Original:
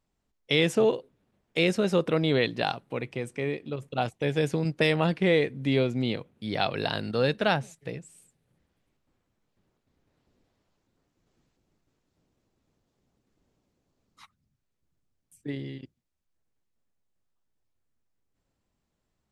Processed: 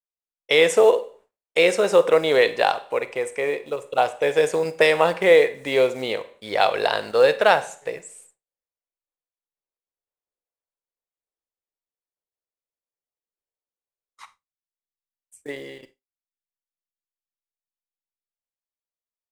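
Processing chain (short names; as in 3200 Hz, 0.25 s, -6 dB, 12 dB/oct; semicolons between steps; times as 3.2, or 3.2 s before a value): short-mantissa float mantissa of 4-bit; graphic EQ 125/250/500/1000/2000/8000 Hz -12/-8/+11/+8/+6/+11 dB; Schroeder reverb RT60 0.48 s, combs from 31 ms, DRR 13 dB; expander -46 dBFS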